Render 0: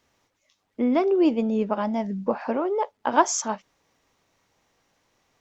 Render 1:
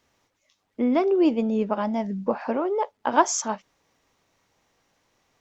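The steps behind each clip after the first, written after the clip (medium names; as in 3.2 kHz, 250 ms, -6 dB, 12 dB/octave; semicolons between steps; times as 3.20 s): no audible change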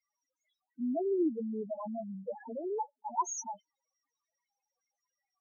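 tilt EQ +2.5 dB/octave; loudest bins only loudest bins 2; trim -5 dB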